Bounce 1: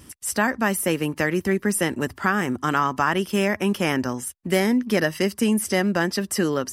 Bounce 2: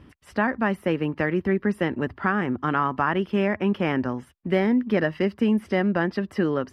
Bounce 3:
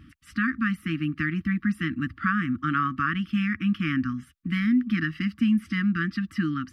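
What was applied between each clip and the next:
air absorption 380 m
brick-wall FIR band-stop 330–1100 Hz

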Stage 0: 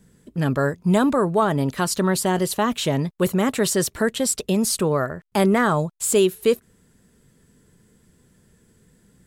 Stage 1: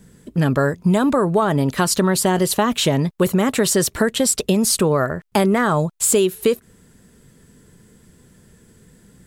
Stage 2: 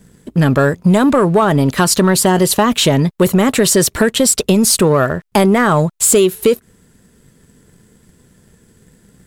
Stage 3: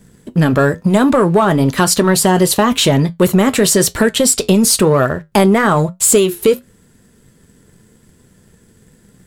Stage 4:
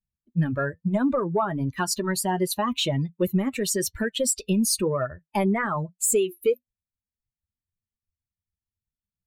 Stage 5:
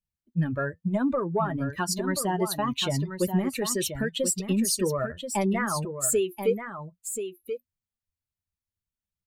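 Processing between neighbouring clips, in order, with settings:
compressor, threshold -20 dBFS, peak gain reduction 7.5 dB; gain +7 dB
sample leveller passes 1; gain +2.5 dB
flange 1 Hz, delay 8 ms, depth 2.8 ms, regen -70%; gain +4.5 dB
per-bin expansion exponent 2; gain -8 dB
echo 1.032 s -8.5 dB; gain -2.5 dB

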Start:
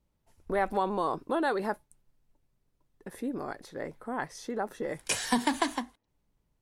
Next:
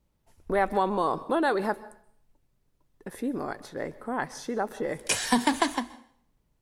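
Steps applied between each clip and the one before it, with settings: plate-style reverb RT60 0.58 s, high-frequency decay 0.95×, pre-delay 0.115 s, DRR 18 dB; gain +3.5 dB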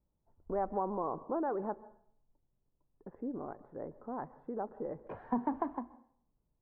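LPF 1100 Hz 24 dB/oct; gain -8.5 dB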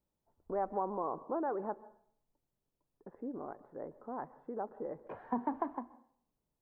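low shelf 150 Hz -11 dB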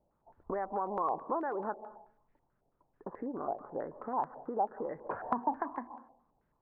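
compressor 2.5:1, threshold -48 dBFS, peak gain reduction 13 dB; stepped low-pass 9.2 Hz 710–1900 Hz; gain +8.5 dB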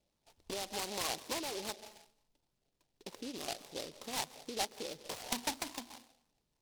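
noise-modulated delay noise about 3900 Hz, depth 0.2 ms; gain -5 dB

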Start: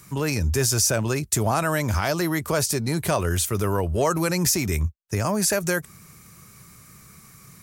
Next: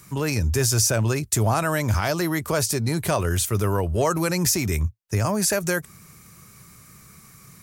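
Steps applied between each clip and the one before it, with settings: dynamic EQ 110 Hz, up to +6 dB, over -40 dBFS, Q 6.2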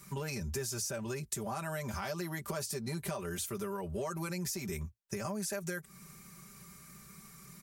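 comb 5.1 ms, depth 96%; compressor 6:1, threshold -27 dBFS, peak gain reduction 12.5 dB; gain -8 dB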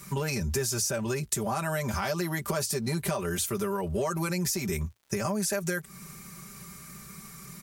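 crackle 150/s -60 dBFS; gain +8 dB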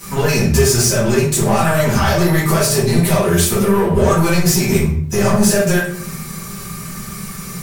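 sample leveller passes 3; shoebox room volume 90 m³, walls mixed, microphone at 2 m; gain -2.5 dB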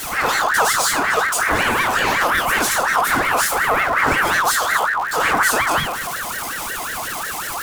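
zero-crossing step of -18 dBFS; ring modulator with a swept carrier 1300 Hz, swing 35%, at 5.5 Hz; gain -3 dB

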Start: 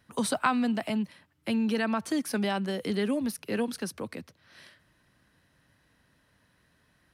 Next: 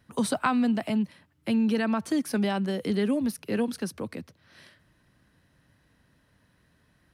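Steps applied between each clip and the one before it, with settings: low shelf 440 Hz +5.5 dB; gain -1 dB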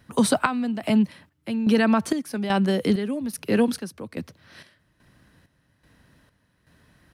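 chopper 1.2 Hz, depth 65%, duty 55%; gain +7 dB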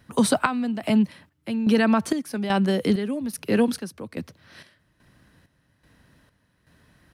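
nothing audible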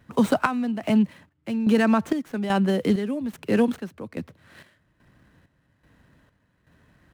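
median filter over 9 samples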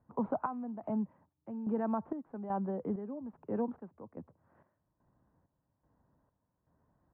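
ladder low-pass 1100 Hz, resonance 45%; gain -6 dB

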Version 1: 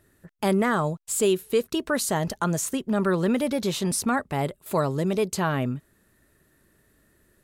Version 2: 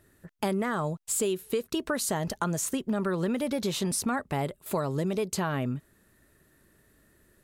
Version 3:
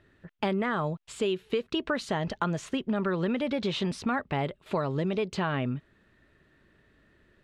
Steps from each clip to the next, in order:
compressor, threshold -25 dBFS, peak gain reduction 8 dB
synth low-pass 3100 Hz, resonance Q 1.5

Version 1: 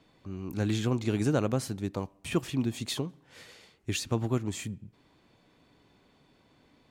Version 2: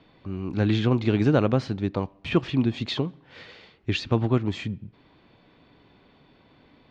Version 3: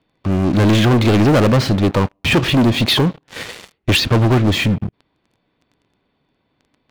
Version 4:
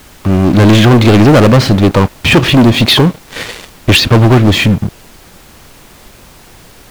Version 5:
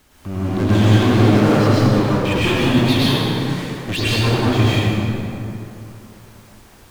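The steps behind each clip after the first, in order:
LPF 4200 Hz 24 dB/oct; gain +6.5 dB
sample leveller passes 5
added noise pink -45 dBFS; gain +7 dB
plate-style reverb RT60 2.9 s, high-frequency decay 0.55×, pre-delay 90 ms, DRR -9 dB; gain -17.5 dB

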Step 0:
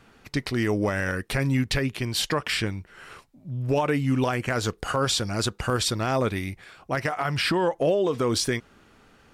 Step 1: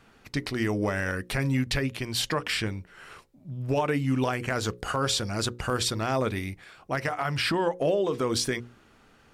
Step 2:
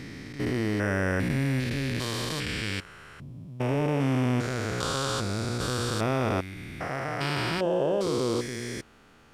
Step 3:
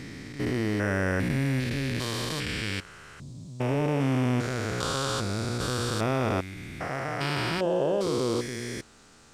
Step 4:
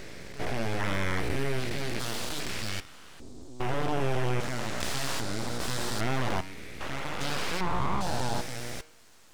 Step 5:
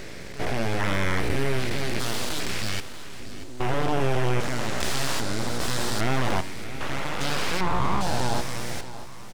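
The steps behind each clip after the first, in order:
notches 60/120/180/240/300/360/420/480/540 Hz; gain -2 dB
stepped spectrum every 0.4 s; gain +3.5 dB
band noise 3500–8600 Hz -61 dBFS
full-wave rectifier; de-hum 156 Hz, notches 37
feedback echo 0.635 s, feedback 44%, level -14.5 dB; gain +4.5 dB

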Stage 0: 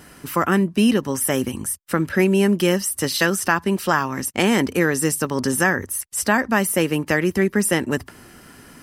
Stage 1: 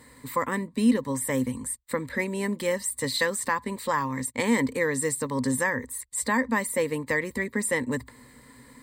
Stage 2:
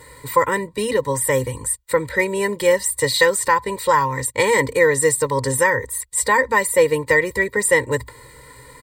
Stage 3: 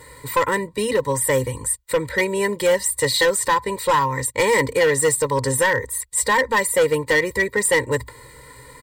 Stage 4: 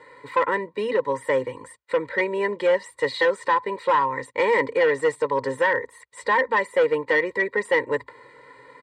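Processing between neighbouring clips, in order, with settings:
ripple EQ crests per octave 1, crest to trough 15 dB; gain -9 dB
comb 2.1 ms, depth 100%; gain +6 dB
hard clip -12.5 dBFS, distortion -13 dB
BPF 290–2400 Hz; gain -1.5 dB

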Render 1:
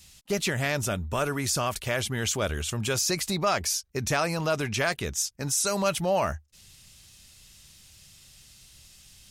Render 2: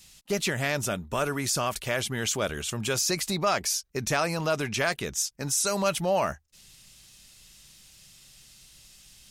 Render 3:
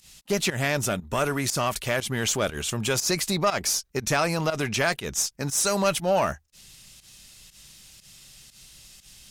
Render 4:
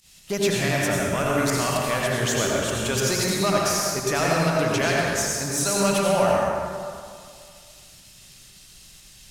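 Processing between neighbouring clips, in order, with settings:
bell 82 Hz -13 dB 0.56 oct
in parallel at -5 dB: one-sided clip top -34 dBFS; on the sum: pump 120 bpm, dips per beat 1, -15 dB, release 0.109 s
reverb RT60 2.2 s, pre-delay 73 ms, DRR -4 dB; gain -2.5 dB

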